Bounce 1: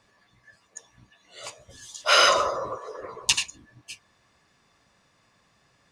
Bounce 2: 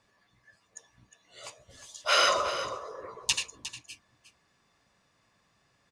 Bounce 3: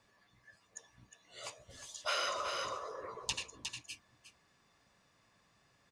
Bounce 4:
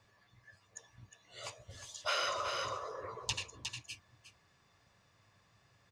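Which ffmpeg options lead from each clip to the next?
-af "aecho=1:1:358:0.237,volume=-5.5dB"
-filter_complex "[0:a]acrossover=split=950|5900[a][b][c];[a]acompressor=threshold=-42dB:ratio=4[d];[b]acompressor=threshold=-36dB:ratio=4[e];[c]acompressor=threshold=-48dB:ratio=4[f];[d][e][f]amix=inputs=3:normalize=0,volume=-1dB"
-af "equalizer=f=100:t=o:w=0.67:g=10,equalizer=f=250:t=o:w=0.67:g=-4,equalizer=f=10k:t=o:w=0.67:g=-5,volume=1dB"

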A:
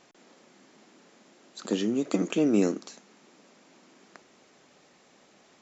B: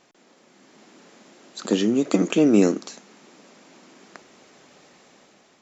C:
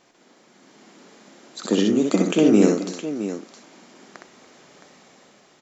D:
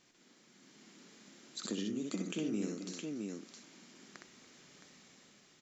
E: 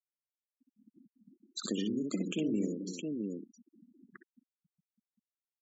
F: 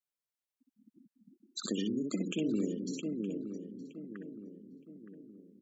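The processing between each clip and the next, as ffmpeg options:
-af "dynaudnorm=f=200:g=7:m=7dB"
-filter_complex "[0:a]bandreject=f=2.6k:w=28,asplit=2[a][b];[b]aecho=0:1:63|288|666:0.668|0.106|0.282[c];[a][c]amix=inputs=2:normalize=0"
-af "equalizer=f=700:t=o:w=2:g=-12,acompressor=threshold=-34dB:ratio=2.5,volume=-5dB"
-af "afftfilt=real='re*gte(hypot(re,im),0.00794)':imag='im*gte(hypot(re,im),0.00794)':win_size=1024:overlap=0.75,volume=4dB"
-filter_complex "[0:a]asplit=2[a][b];[b]adelay=918,lowpass=f=1k:p=1,volume=-9dB,asplit=2[c][d];[d]adelay=918,lowpass=f=1k:p=1,volume=0.49,asplit=2[e][f];[f]adelay=918,lowpass=f=1k:p=1,volume=0.49,asplit=2[g][h];[h]adelay=918,lowpass=f=1k:p=1,volume=0.49,asplit=2[i][j];[j]adelay=918,lowpass=f=1k:p=1,volume=0.49,asplit=2[k][l];[l]adelay=918,lowpass=f=1k:p=1,volume=0.49[m];[a][c][e][g][i][k][m]amix=inputs=7:normalize=0"

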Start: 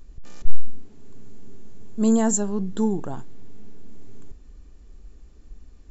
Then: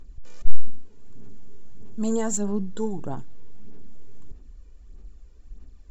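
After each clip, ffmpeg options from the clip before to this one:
-af "aphaser=in_gain=1:out_gain=1:delay=2.1:decay=0.5:speed=1.6:type=sinusoidal,volume=-5dB"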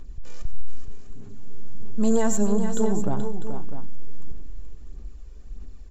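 -filter_complex "[0:a]acrossover=split=3000[a][b];[b]alimiter=level_in=0.5dB:limit=-24dB:level=0:latency=1:release=481,volume=-0.5dB[c];[a][c]amix=inputs=2:normalize=0,asoftclip=type=tanh:threshold=-18.5dB,aecho=1:1:91|112|429|463|649:0.2|0.133|0.376|0.119|0.251,volume=5dB"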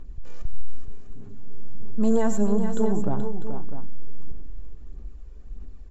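-af "highshelf=f=3.3k:g=-10.5"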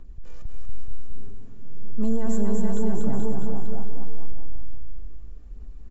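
-filter_complex "[0:a]acrossover=split=290[a][b];[b]alimiter=level_in=2dB:limit=-24dB:level=0:latency=1:release=35,volume=-2dB[c];[a][c]amix=inputs=2:normalize=0,aecho=1:1:240|456|650.4|825.4|982.8:0.631|0.398|0.251|0.158|0.1,volume=-3dB"

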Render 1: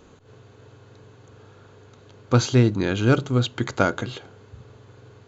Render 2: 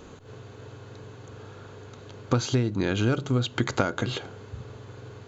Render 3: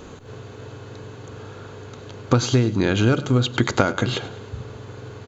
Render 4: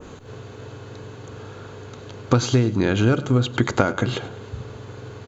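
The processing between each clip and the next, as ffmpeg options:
-af "acompressor=threshold=-25dB:ratio=16,volume=5dB"
-af "aecho=1:1:103|206|309|412:0.141|0.0692|0.0339|0.0166,volume=6dB"
-af "adynamicequalizer=threshold=0.00708:dfrequency=4400:dqfactor=0.78:tfrequency=4400:tqfactor=0.78:attack=5:release=100:ratio=0.375:range=2.5:mode=cutabove:tftype=bell"

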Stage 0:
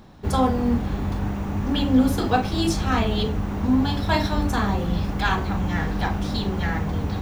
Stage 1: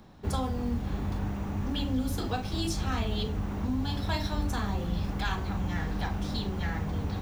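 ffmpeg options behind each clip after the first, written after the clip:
-filter_complex "[0:a]acrossover=split=130|3000[a][b][c];[b]acompressor=threshold=-28dB:ratio=2.5[d];[a][d][c]amix=inputs=3:normalize=0,volume=-5.5dB"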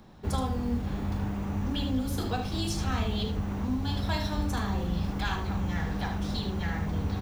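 -af "aecho=1:1:75:0.398"

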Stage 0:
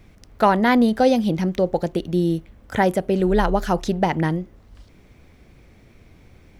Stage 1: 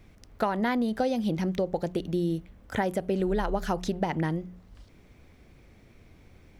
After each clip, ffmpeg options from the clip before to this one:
-af "bandreject=f=60.05:t=h:w=4,bandreject=f=120.1:t=h:w=4,bandreject=f=180.15:t=h:w=4,acompressor=threshold=-18dB:ratio=10,volume=-4.5dB"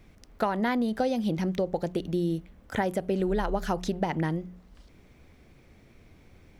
-af "bandreject=f=50:t=h:w=6,bandreject=f=100:t=h:w=6"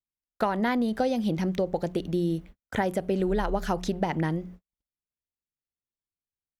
-af "agate=range=-51dB:threshold=-44dB:ratio=16:detection=peak,volume=1dB"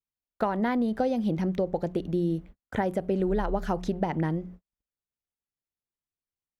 -af "highshelf=f=2.1k:g=-9"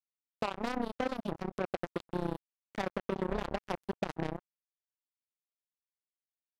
-af "tremolo=f=31:d=0.462,acrusher=bits=3:mix=0:aa=0.5,volume=-5.5dB"

